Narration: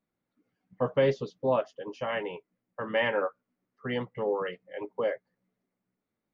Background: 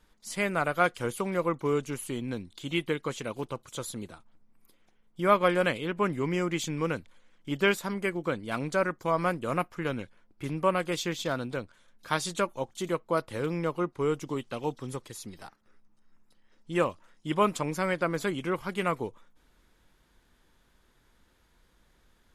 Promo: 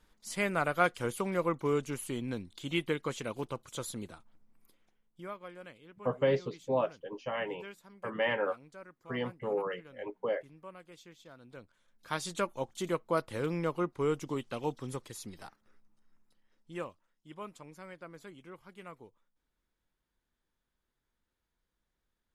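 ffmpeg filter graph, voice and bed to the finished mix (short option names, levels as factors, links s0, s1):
-filter_complex "[0:a]adelay=5250,volume=0.668[s0];[1:a]volume=7.94,afade=t=out:st=4.54:d=0.8:silence=0.0944061,afade=t=in:st=11.39:d=1.27:silence=0.0944061,afade=t=out:st=15.6:d=1.47:silence=0.141254[s1];[s0][s1]amix=inputs=2:normalize=0"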